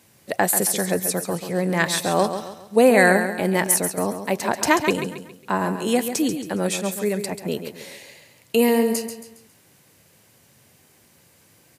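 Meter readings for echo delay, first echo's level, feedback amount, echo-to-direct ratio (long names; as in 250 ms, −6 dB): 137 ms, −9.0 dB, 39%, −8.5 dB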